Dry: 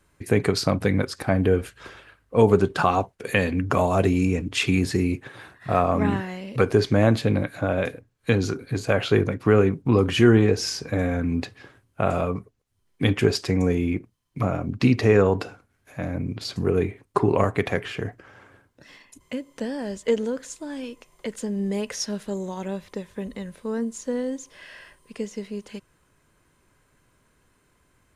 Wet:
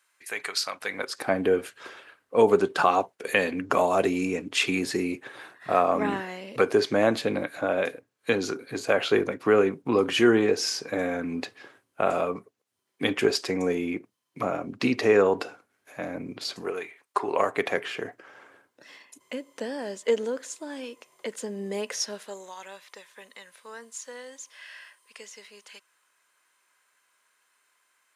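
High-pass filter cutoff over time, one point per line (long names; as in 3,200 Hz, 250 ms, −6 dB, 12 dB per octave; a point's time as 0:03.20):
0:00.77 1,300 Hz
0:01.24 320 Hz
0:16.49 320 Hz
0:16.89 1,200 Hz
0:17.62 350 Hz
0:21.96 350 Hz
0:22.56 1,100 Hz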